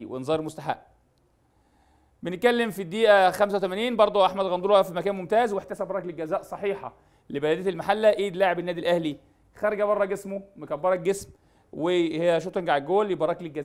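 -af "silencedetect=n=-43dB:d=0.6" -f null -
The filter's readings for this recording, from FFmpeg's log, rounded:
silence_start: 0.79
silence_end: 2.23 | silence_duration: 1.44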